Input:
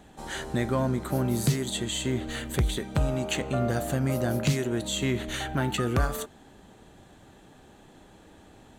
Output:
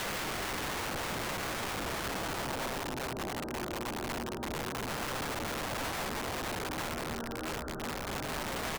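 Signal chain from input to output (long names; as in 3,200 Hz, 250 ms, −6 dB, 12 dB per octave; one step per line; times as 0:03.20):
Butterworth low-pass 1,500 Hz 96 dB per octave
parametric band 93 Hz −15 dB 0.74 octaves
hum removal 55.55 Hz, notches 10
pitch-shifted copies added −5 semitones −14 dB
backwards echo 94 ms −11 dB
extreme stretch with random phases 6.8×, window 0.50 s, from 0:01.27
wrap-around overflow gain 31 dB
floating-point word with a short mantissa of 6 bits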